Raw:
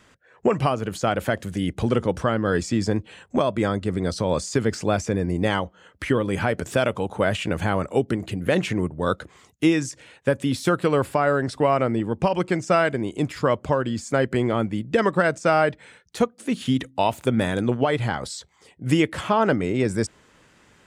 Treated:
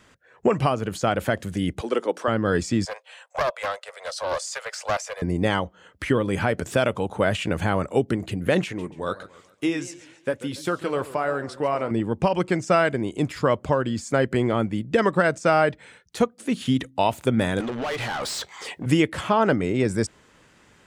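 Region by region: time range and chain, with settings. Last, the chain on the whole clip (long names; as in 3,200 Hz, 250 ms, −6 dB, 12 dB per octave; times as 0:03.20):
0:01.81–0:02.28: high-pass filter 300 Hz 24 dB per octave + multiband upward and downward expander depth 40%
0:02.85–0:05.22: Butterworth high-pass 520 Hz 72 dB per octave + highs frequency-modulated by the lows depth 0.33 ms
0:08.64–0:11.91: bass and treble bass −6 dB, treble 0 dB + flanger 1.1 Hz, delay 0.6 ms, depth 9.7 ms, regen −70% + feedback echo with a swinging delay time 140 ms, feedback 40%, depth 157 cents, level −16 dB
0:17.60–0:18.86: low-shelf EQ 450 Hz −3.5 dB + downward compressor 5 to 1, threshold −32 dBFS + mid-hump overdrive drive 28 dB, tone 4,700 Hz, clips at −20.5 dBFS
whole clip: no processing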